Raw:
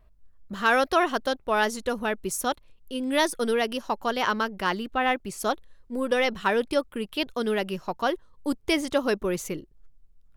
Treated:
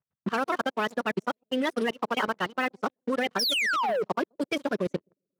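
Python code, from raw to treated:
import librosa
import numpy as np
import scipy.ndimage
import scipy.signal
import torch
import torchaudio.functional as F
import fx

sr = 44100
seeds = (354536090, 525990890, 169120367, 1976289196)

y = fx.spec_quant(x, sr, step_db=30)
y = fx.high_shelf(y, sr, hz=8700.0, db=-12.0)
y = fx.echo_bbd(y, sr, ms=248, stages=1024, feedback_pct=50, wet_db=-19.0)
y = fx.stretch_vocoder(y, sr, factor=0.52)
y = fx.transient(y, sr, attack_db=9, sustain_db=-5)
y = fx.env_lowpass(y, sr, base_hz=1500.0, full_db=-18.0)
y = fx.spec_paint(y, sr, seeds[0], shape='fall', start_s=3.39, length_s=0.64, low_hz=410.0, high_hz=5800.0, level_db=-13.0)
y = fx.leveller(y, sr, passes=3)
y = scipy.signal.sosfilt(scipy.signal.butter(4, 130.0, 'highpass', fs=sr, output='sos'), y)
y = fx.level_steps(y, sr, step_db=20)
y = F.gain(torch.from_numpy(y), -6.0).numpy()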